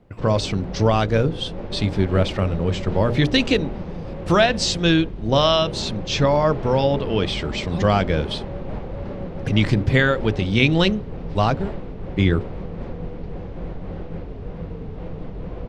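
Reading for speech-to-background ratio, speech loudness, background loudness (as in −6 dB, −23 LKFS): 12.0 dB, −20.5 LKFS, −32.5 LKFS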